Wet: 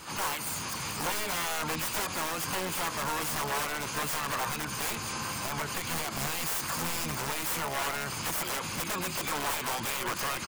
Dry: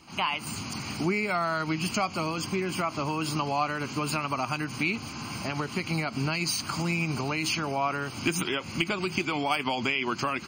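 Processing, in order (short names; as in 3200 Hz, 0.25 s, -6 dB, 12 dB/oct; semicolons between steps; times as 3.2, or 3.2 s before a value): high shelf 3500 Hz +10.5 dB; wrapped overs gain 22 dB; limiter -31 dBFS, peak gain reduction 9 dB; fifteen-band EQ 250 Hz -6 dB, 1000 Hz +7 dB, 4000 Hz -6 dB; harmoniser -12 st -12 dB, +7 st -5 dB; gain +4 dB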